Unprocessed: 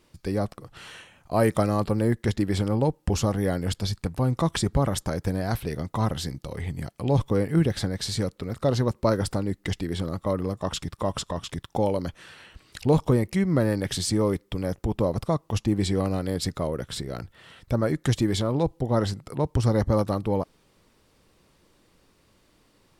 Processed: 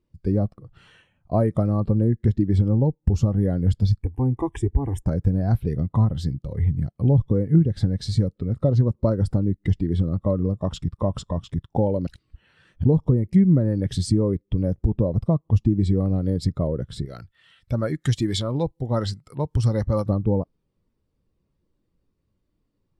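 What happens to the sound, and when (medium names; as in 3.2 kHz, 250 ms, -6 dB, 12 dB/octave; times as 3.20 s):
4.03–5.06 s: static phaser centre 880 Hz, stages 8
12.07–12.84 s: reverse
17.05–20.06 s: tilt shelf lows -7.5 dB
whole clip: bass shelf 280 Hz +6.5 dB; compression 10:1, threshold -19 dBFS; spectral contrast expander 1.5:1; trim +3.5 dB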